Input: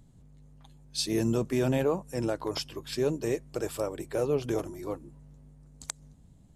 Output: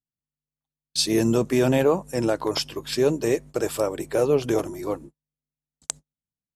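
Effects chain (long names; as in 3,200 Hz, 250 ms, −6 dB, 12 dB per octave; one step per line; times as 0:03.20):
noise gate −44 dBFS, range −45 dB
low-shelf EQ 110 Hz −9 dB
level +8 dB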